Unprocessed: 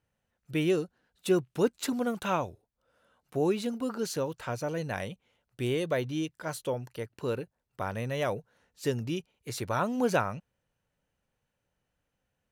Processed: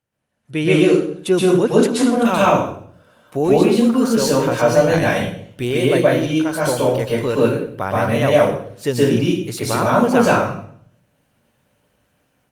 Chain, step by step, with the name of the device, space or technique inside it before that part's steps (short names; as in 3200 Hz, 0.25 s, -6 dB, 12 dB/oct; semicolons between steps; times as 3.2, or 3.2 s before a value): far-field microphone of a smart speaker (reverb RT60 0.60 s, pre-delay 0.118 s, DRR -6 dB; HPF 93 Hz 12 dB/oct; AGC gain up to 13.5 dB; Opus 32 kbps 48000 Hz)